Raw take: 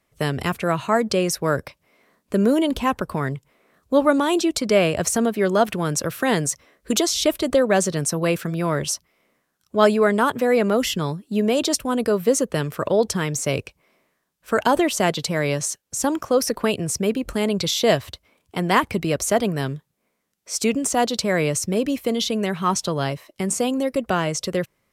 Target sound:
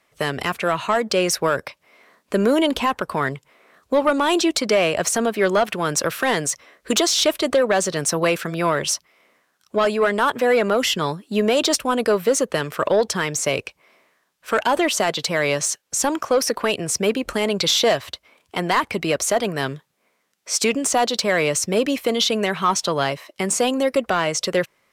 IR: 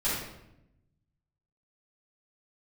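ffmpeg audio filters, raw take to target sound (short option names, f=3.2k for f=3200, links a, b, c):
-filter_complex "[0:a]asplit=2[a][b];[b]highpass=f=720:p=1,volume=16dB,asoftclip=type=tanh:threshold=-1dB[c];[a][c]amix=inputs=2:normalize=0,lowpass=f=5.1k:p=1,volume=-6dB,alimiter=limit=-8dB:level=0:latency=1:release=476,volume=-1.5dB"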